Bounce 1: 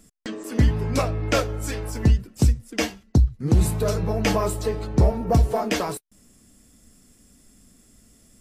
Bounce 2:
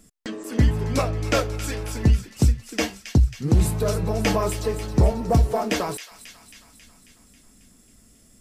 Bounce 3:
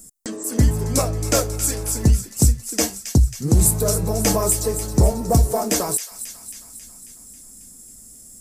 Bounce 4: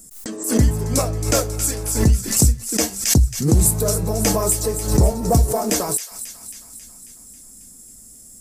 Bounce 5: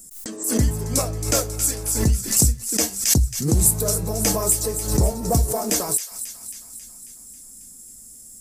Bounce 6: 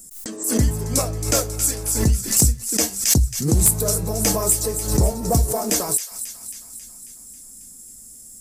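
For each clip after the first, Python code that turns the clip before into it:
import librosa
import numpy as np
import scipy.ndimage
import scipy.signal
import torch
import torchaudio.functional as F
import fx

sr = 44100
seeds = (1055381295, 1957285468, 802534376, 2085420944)

y1 = fx.echo_wet_highpass(x, sr, ms=271, feedback_pct=62, hz=2000.0, wet_db=-10)
y2 = fx.curve_eq(y1, sr, hz=(680.0, 3000.0, 7800.0), db=(0, -7, 14))
y2 = y2 * librosa.db_to_amplitude(2.0)
y3 = fx.pre_swell(y2, sr, db_per_s=95.0)
y4 = fx.high_shelf(y3, sr, hz=4200.0, db=5.5)
y4 = y4 * librosa.db_to_amplitude(-4.0)
y5 = np.minimum(y4, 2.0 * 10.0 ** (-6.5 / 20.0) - y4)
y5 = y5 * librosa.db_to_amplitude(1.0)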